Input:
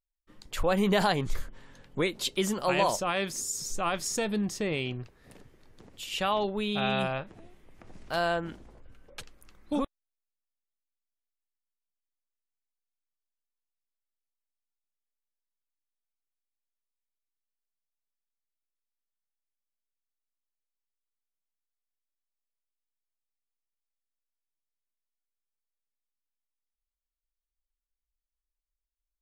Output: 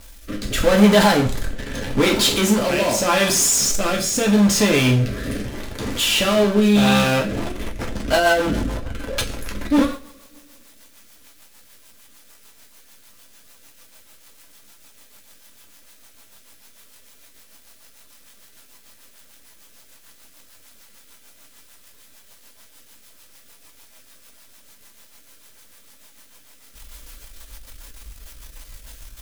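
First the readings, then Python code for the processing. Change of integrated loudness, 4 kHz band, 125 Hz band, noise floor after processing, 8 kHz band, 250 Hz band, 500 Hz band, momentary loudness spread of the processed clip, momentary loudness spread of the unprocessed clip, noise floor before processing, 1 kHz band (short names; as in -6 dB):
+11.5 dB, +13.5 dB, +14.5 dB, -50 dBFS, +15.5 dB, +15.0 dB, +11.5 dB, 16 LU, 17 LU, under -85 dBFS, +8.0 dB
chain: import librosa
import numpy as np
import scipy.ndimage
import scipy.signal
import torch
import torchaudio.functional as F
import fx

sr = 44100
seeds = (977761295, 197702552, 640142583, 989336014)

y = fx.power_curve(x, sr, exponent=0.35)
y = fx.rev_double_slope(y, sr, seeds[0], early_s=0.39, late_s=2.3, knee_db=-26, drr_db=0.0)
y = fx.rotary_switch(y, sr, hz=0.8, then_hz=6.7, switch_at_s=6.93)
y = F.gain(torch.from_numpy(y), 2.5).numpy()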